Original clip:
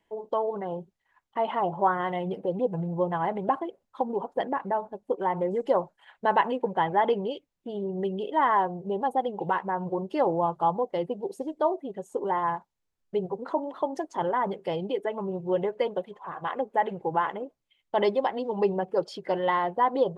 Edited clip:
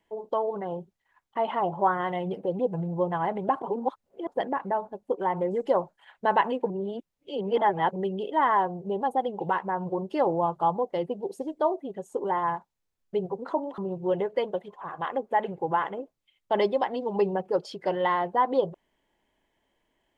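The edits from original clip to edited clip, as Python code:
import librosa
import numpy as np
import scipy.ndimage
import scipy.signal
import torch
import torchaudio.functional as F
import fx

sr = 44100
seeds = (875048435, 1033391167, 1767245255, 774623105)

y = fx.edit(x, sr, fx.reverse_span(start_s=3.62, length_s=0.65),
    fx.reverse_span(start_s=6.7, length_s=1.26),
    fx.cut(start_s=13.78, length_s=1.43), tone=tone)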